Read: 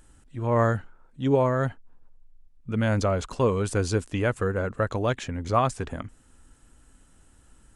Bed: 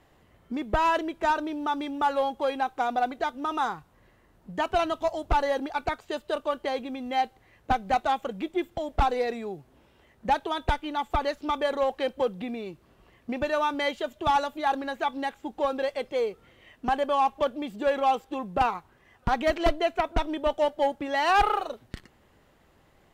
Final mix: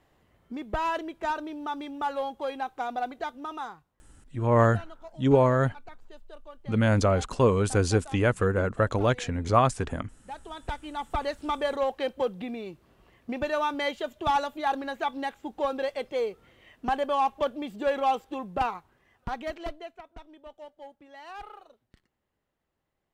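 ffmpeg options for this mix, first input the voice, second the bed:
-filter_complex "[0:a]adelay=4000,volume=1.5dB[a];[1:a]volume=12.5dB,afade=t=out:st=3.31:d=0.67:silence=0.199526,afade=t=in:st=10.26:d=1.16:silence=0.133352,afade=t=out:st=18.23:d=1.79:silence=0.105925[b];[a][b]amix=inputs=2:normalize=0"

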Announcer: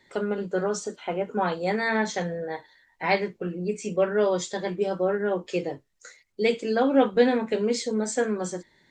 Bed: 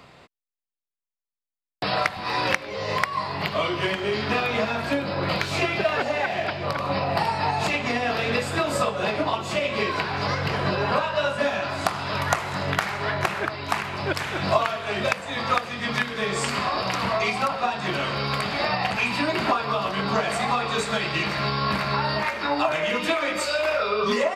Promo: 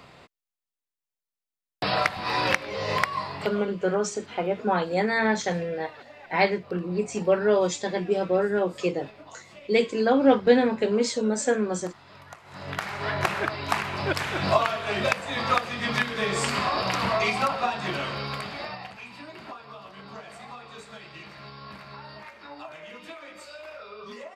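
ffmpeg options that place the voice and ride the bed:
-filter_complex "[0:a]adelay=3300,volume=1.5dB[a];[1:a]volume=21.5dB,afade=t=out:st=3.01:d=0.66:silence=0.0794328,afade=t=in:st=12.43:d=0.86:silence=0.0794328,afade=t=out:st=17.46:d=1.49:silence=0.125893[b];[a][b]amix=inputs=2:normalize=0"

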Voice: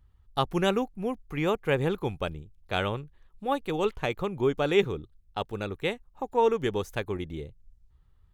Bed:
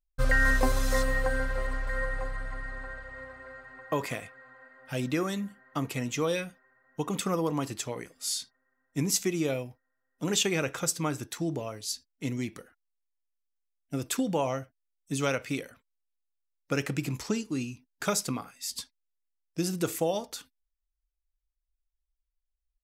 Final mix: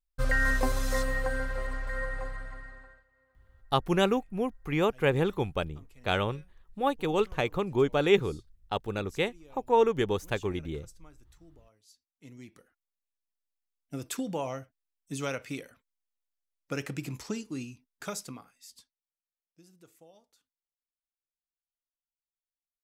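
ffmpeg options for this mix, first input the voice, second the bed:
-filter_complex "[0:a]adelay=3350,volume=0.5dB[a];[1:a]volume=18.5dB,afade=t=out:st=2.27:d=0.79:silence=0.0668344,afade=t=in:st=12.04:d=1.5:silence=0.0891251,afade=t=out:st=17.59:d=1.43:silence=0.0668344[b];[a][b]amix=inputs=2:normalize=0"

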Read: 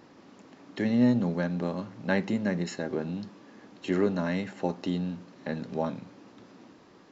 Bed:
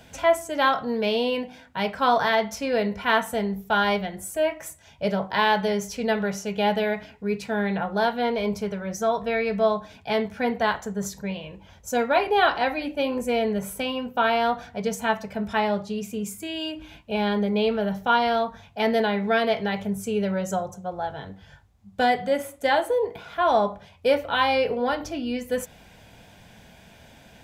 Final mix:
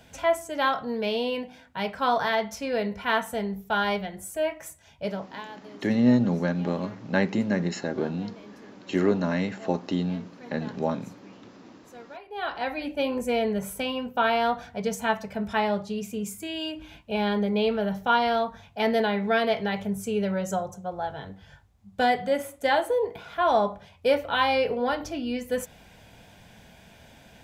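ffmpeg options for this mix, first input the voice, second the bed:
-filter_complex "[0:a]adelay=5050,volume=3dB[a];[1:a]volume=17.5dB,afade=t=out:st=4.95:d=0.51:silence=0.112202,afade=t=in:st=12.28:d=0.65:silence=0.0891251[b];[a][b]amix=inputs=2:normalize=0"

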